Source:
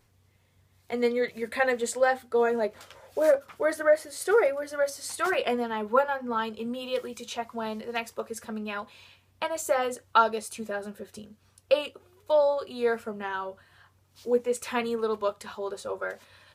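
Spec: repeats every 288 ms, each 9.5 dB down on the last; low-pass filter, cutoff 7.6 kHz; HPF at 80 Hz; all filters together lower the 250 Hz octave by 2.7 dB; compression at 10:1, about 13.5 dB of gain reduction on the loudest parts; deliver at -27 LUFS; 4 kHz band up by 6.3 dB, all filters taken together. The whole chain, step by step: high-pass 80 Hz; low-pass 7.6 kHz; peaking EQ 250 Hz -3 dB; peaking EQ 4 kHz +8.5 dB; compression 10:1, threshold -30 dBFS; feedback delay 288 ms, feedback 33%, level -9.5 dB; trim +8.5 dB

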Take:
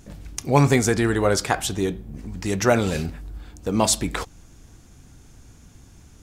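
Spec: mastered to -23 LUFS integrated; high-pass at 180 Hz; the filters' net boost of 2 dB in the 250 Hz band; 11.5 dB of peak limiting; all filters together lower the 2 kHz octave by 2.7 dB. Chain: high-pass 180 Hz; peaking EQ 250 Hz +4 dB; peaking EQ 2 kHz -3.5 dB; trim +2.5 dB; peak limiter -11 dBFS

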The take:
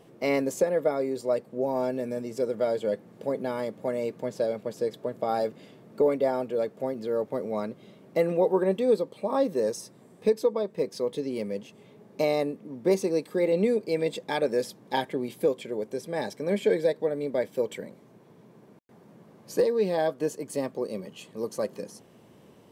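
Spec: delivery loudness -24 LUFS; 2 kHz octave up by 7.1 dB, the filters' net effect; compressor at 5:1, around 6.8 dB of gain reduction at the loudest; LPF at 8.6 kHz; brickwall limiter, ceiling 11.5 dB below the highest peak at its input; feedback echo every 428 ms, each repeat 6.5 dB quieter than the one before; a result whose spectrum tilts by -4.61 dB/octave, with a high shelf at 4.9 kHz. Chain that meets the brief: low-pass 8.6 kHz; peaking EQ 2 kHz +8 dB; treble shelf 4.9 kHz +3 dB; compression 5:1, threshold -25 dBFS; peak limiter -25.5 dBFS; feedback delay 428 ms, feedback 47%, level -6.5 dB; trim +11 dB

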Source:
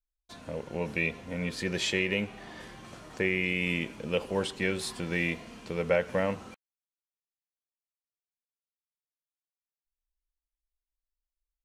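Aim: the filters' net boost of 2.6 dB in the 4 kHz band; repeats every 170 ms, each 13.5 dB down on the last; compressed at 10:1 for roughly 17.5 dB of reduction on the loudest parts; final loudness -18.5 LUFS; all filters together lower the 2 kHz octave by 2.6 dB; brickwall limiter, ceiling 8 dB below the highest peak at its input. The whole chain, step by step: peaking EQ 2 kHz -5 dB; peaking EQ 4 kHz +5.5 dB; compression 10:1, threshold -39 dBFS; peak limiter -33 dBFS; feedback delay 170 ms, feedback 21%, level -13.5 dB; trim +27 dB

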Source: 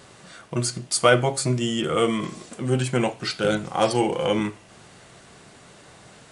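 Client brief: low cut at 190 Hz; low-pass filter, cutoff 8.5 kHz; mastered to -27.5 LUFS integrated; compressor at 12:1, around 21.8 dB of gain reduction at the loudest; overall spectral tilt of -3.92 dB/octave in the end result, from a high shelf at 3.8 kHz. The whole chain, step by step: high-pass 190 Hz; low-pass 8.5 kHz; treble shelf 3.8 kHz -3.5 dB; compression 12:1, threshold -34 dBFS; trim +12.5 dB

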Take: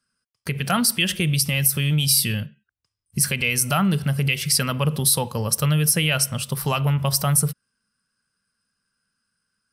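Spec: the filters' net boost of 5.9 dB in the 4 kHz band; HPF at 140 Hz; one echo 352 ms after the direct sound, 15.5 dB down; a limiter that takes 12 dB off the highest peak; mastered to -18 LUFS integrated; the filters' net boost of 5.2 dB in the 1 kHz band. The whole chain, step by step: high-pass 140 Hz; peaking EQ 1 kHz +6.5 dB; peaking EQ 4 kHz +8 dB; peak limiter -14.5 dBFS; delay 352 ms -15.5 dB; trim +6.5 dB

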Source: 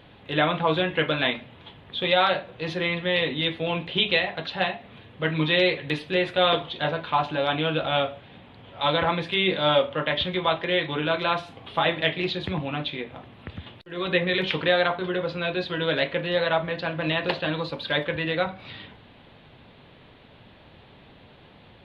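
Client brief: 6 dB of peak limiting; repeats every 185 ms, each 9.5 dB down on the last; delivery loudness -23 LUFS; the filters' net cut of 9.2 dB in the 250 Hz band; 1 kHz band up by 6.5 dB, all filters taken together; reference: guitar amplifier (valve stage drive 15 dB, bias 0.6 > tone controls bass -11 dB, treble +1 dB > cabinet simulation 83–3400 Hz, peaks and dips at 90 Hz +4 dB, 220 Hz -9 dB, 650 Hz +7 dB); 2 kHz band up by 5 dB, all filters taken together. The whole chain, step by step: peaking EQ 250 Hz -7.5 dB; peaking EQ 1 kHz +6 dB; peaking EQ 2 kHz +4.5 dB; peak limiter -10 dBFS; feedback delay 185 ms, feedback 33%, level -9.5 dB; valve stage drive 15 dB, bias 0.6; tone controls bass -11 dB, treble +1 dB; cabinet simulation 83–3400 Hz, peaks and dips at 90 Hz +4 dB, 220 Hz -9 dB, 650 Hz +7 dB; trim +3.5 dB

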